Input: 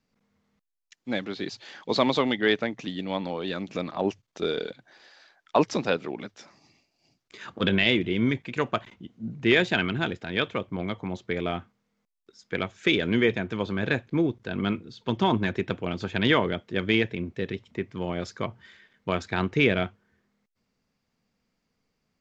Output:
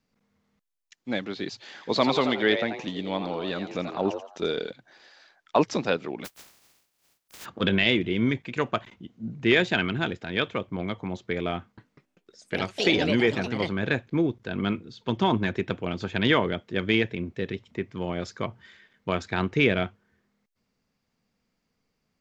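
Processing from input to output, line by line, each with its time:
0:01.55–0:04.51: echo with shifted repeats 85 ms, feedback 33%, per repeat +140 Hz, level −8.5 dB
0:06.24–0:07.44: compressing power law on the bin magnitudes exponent 0.11
0:11.58–0:14.06: delay with pitch and tempo change per echo 196 ms, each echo +4 semitones, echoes 3, each echo −6 dB

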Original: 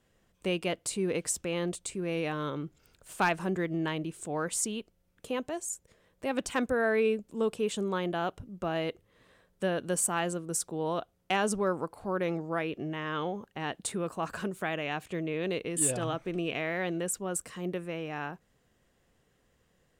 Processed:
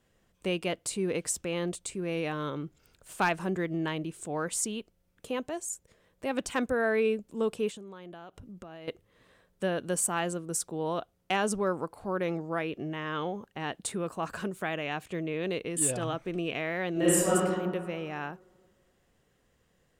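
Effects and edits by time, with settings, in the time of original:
0:07.69–0:08.88: downward compressor 16 to 1, threshold −41 dBFS
0:16.92–0:17.32: thrown reverb, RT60 1.8 s, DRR −10.5 dB

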